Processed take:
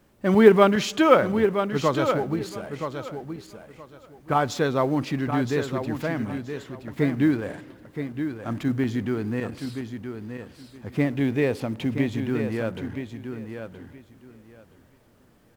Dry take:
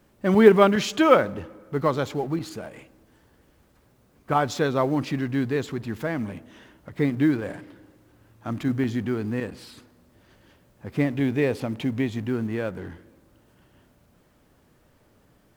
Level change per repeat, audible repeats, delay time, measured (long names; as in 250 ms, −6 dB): −14.5 dB, 2, 972 ms